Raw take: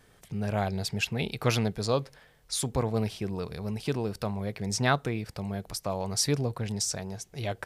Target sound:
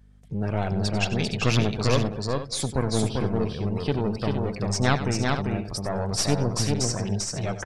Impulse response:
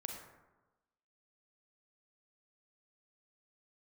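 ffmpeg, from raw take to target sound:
-filter_complex "[0:a]asplit=2[s0][s1];[s1]aecho=0:1:212:0.0841[s2];[s0][s2]amix=inputs=2:normalize=0,aeval=exprs='clip(val(0),-1,0.0211)':c=same,lowpass=9400,afftdn=nr=17:nf=-46,asplit=2[s3][s4];[s4]aecho=0:1:94|394|462:0.224|0.708|0.266[s5];[s3][s5]amix=inputs=2:normalize=0,aeval=exprs='val(0)+0.00141*(sin(2*PI*50*n/s)+sin(2*PI*2*50*n/s)/2+sin(2*PI*3*50*n/s)/3+sin(2*PI*4*50*n/s)/4+sin(2*PI*5*50*n/s)/5)':c=same,volume=1.78"

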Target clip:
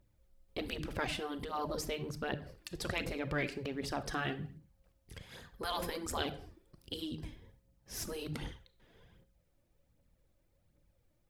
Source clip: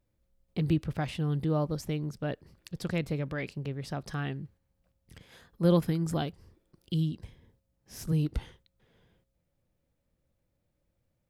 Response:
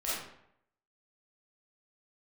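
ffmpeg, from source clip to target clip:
-filter_complex "[0:a]asplit=2[s0][s1];[1:a]atrim=start_sample=2205,afade=t=out:st=0.38:d=0.01,atrim=end_sample=17199,asetrate=57330,aresample=44100[s2];[s1][s2]afir=irnorm=-1:irlink=0,volume=0.188[s3];[s0][s3]amix=inputs=2:normalize=0,aphaser=in_gain=1:out_gain=1:delay=3.5:decay=0.47:speed=1.3:type=triangular,afftfilt=real='re*lt(hypot(re,im),0.141)':imag='im*lt(hypot(re,im),0.141)':win_size=1024:overlap=0.75,volume=1.12"

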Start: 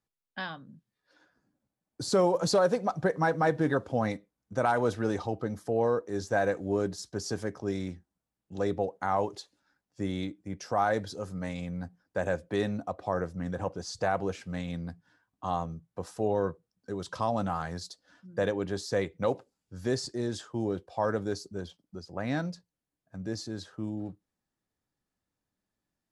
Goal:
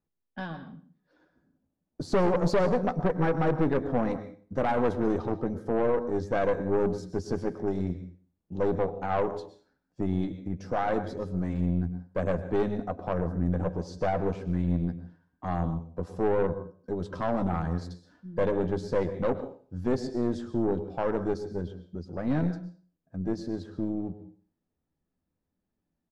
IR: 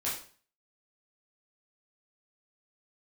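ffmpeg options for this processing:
-filter_complex "[0:a]tiltshelf=f=740:g=7,asplit=2[s0][s1];[s1]adynamicsmooth=sensitivity=3:basefreq=5800,volume=1.12[s2];[s0][s2]amix=inputs=2:normalize=0,equalizer=f=110:t=o:w=0.26:g=-10.5,asplit=2[s3][s4];[s4]adelay=12,volume=0.299[s5];[s3][s5]amix=inputs=2:normalize=0,asplit=2[s6][s7];[1:a]atrim=start_sample=2205,adelay=103[s8];[s7][s8]afir=irnorm=-1:irlink=0,volume=0.158[s9];[s6][s9]amix=inputs=2:normalize=0,aeval=exprs='(tanh(6.31*val(0)+0.6)-tanh(0.6))/6.31':c=same,volume=0.668"

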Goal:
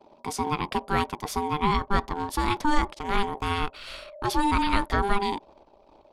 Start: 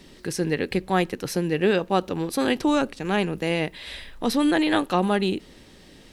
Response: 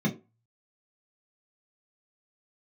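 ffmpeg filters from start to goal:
-af "anlmdn=0.0251,aeval=exprs='val(0)*sin(2*PI*600*n/s)':c=same,asubboost=boost=5.5:cutoff=55"

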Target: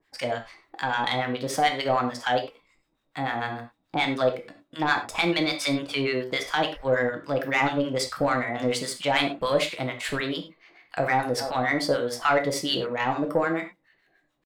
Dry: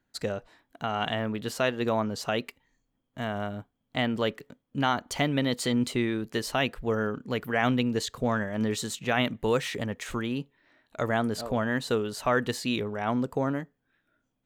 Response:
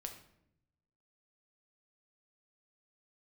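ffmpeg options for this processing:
-filter_complex "[0:a]acrossover=split=790[s0][s1];[s0]aeval=exprs='val(0)*(1-1/2+1/2*cos(2*PI*6.8*n/s))':c=same[s2];[s1]aeval=exprs='val(0)*(1-1/2-1/2*cos(2*PI*6.8*n/s))':c=same[s3];[s2][s3]amix=inputs=2:normalize=0,asplit=2[s4][s5];[s5]highpass=f=720:p=1,volume=4.47,asoftclip=type=tanh:threshold=0.237[s6];[s4][s6]amix=inputs=2:normalize=0,lowpass=f=3400:p=1,volume=0.501,asetrate=50951,aresample=44100,atempo=0.865537,asplit=2[s7][s8];[s8]acompressor=threshold=0.01:ratio=6,volume=0.75[s9];[s7][s9]amix=inputs=2:normalize=0[s10];[1:a]atrim=start_sample=2205,afade=t=out:st=0.16:d=0.01,atrim=end_sample=7497[s11];[s10][s11]afir=irnorm=-1:irlink=0,volume=2.11"

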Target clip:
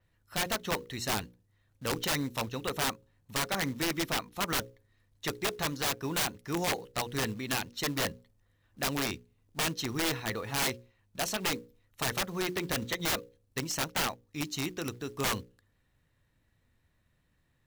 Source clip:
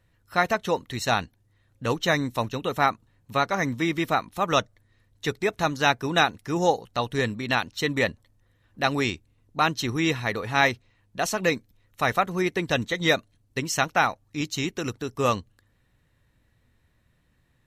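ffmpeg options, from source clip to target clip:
-af "bandreject=f=60:t=h:w=6,bandreject=f=120:t=h:w=6,bandreject=f=180:t=h:w=6,bandreject=f=240:t=h:w=6,bandreject=f=300:t=h:w=6,bandreject=f=360:t=h:w=6,bandreject=f=420:t=h:w=6,bandreject=f=480:t=h:w=6,bandreject=f=540:t=h:w=6,aeval=exprs='(mod(7.5*val(0)+1,2)-1)/7.5':c=same,acrusher=bits=5:mode=log:mix=0:aa=0.000001,adynamicequalizer=threshold=0.00562:dfrequency=9100:dqfactor=1.4:tfrequency=9100:tqfactor=1.4:attack=5:release=100:ratio=0.375:range=2.5:mode=cutabove:tftype=bell,volume=0.531"

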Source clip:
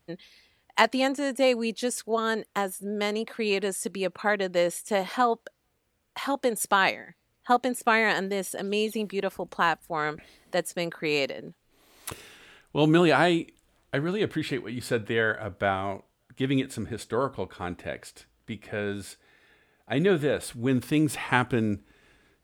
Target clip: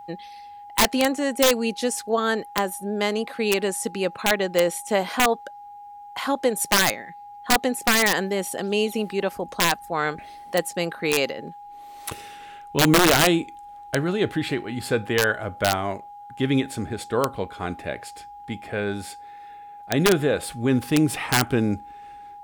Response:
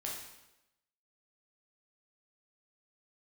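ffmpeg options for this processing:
-af "aeval=exprs='(mod(4.73*val(0)+1,2)-1)/4.73':c=same,aeval=exprs='val(0)+0.00708*sin(2*PI*820*n/s)':c=same,volume=1.58"

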